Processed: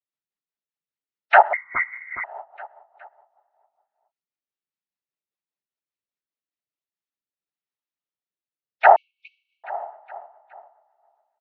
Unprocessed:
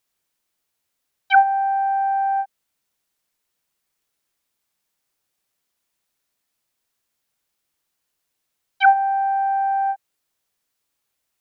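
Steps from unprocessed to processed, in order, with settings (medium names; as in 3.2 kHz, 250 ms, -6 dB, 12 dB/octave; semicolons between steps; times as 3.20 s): gate with hold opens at -10 dBFS; spectral gate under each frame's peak -20 dB strong; rotary cabinet horn 5 Hz, later 0.6 Hz, at 6.57 s; flange 0.32 Hz, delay 8.3 ms, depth 6.8 ms, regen +37%; noise-vocoded speech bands 12; distance through air 180 m; feedback delay 416 ms, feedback 44%, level -15 dB; 1.53–2.24 s: frequency inversion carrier 2.8 kHz; 8.96–9.64 s: brick-wall FIR high-pass 2.2 kHz; loudness maximiser +13 dB; trim -1 dB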